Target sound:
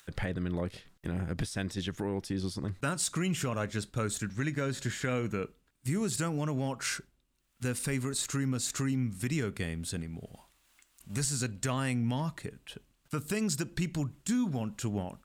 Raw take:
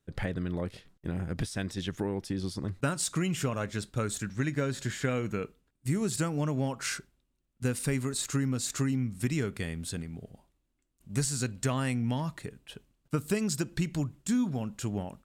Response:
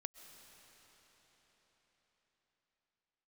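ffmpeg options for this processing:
-filter_complex "[0:a]acrossover=split=870[link_01][link_02];[link_01]alimiter=limit=-24dB:level=0:latency=1[link_03];[link_02]acompressor=mode=upward:threshold=-44dB:ratio=2.5[link_04];[link_03][link_04]amix=inputs=2:normalize=0"

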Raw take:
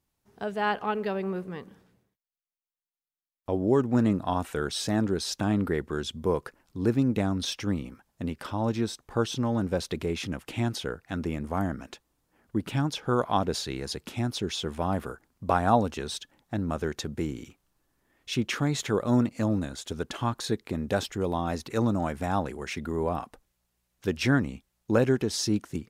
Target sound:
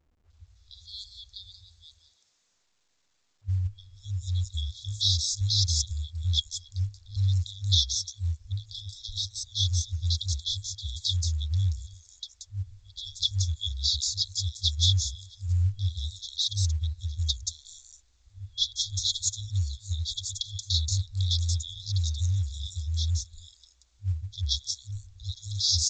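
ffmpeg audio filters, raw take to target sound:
ffmpeg -i in.wav -filter_complex "[0:a]acontrast=21,acrossover=split=190|5400[link_01][link_02][link_03];[link_02]adelay=300[link_04];[link_03]adelay=480[link_05];[link_01][link_04][link_05]amix=inputs=3:normalize=0,asettb=1/sr,asplit=3[link_06][link_07][link_08];[link_06]atrim=end=3.664[link_09];[link_07]atrim=start=3.66:end=4.47,asetpts=PTS-STARTPTS,afade=type=in:duration=0.004:curve=qsin,afade=type=out:start_time=0.806:duration=0.004:curve=qsin,acrossover=split=170[link_10][link_11];[link_10]acompressor=threshold=-33dB:ratio=1.5[link_12];[link_12][link_11]amix=inputs=2:normalize=0[link_13];[link_08]atrim=start=4.466[link_14];[link_09][link_13]acrossfade=duration=0.004:curve1=hsin:curve2=qsin[link_15];[link_15][link_14]acrossfade=duration=0.004:curve1=qsin:curve2=hsin,asettb=1/sr,asplit=3[link_16][link_17][link_18];[link_16]atrim=end=23.124[link_19];[link_17]atrim=start=23.12:end=24.07,asetpts=PTS-STARTPTS,afade=type=in:duration=0.004:curve=qsin,afade=type=out:start_time=0.946:duration=0.004:curve=qsin,equalizer=frequency=96:width=2.1:gain=3[link_20];[link_18]atrim=start=24.066[link_21];[link_19][link_20]acrossfade=duration=0.004:curve1=hsin:curve2=qsin[link_22];[link_22][link_21]acrossfade=duration=0.004:curve1=qsin:curve2=hsin,afftfilt=real='re*(1-between(b*sr/4096,100,3300))':imag='im*(1-between(b*sr/4096,100,3300))':win_size=4096:overlap=0.75,volume=7.5dB" -ar 16000 -c:a pcm_alaw out.wav

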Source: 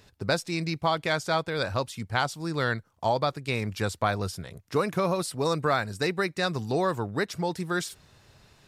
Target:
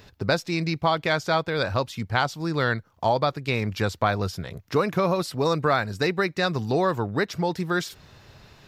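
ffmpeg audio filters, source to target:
ffmpeg -i in.wav -filter_complex "[0:a]equalizer=frequency=9100:width_type=o:width=0.67:gain=-12,asplit=2[link_01][link_02];[link_02]acompressor=threshold=-37dB:ratio=6,volume=-2dB[link_03];[link_01][link_03]amix=inputs=2:normalize=0,volume=2dB" out.wav

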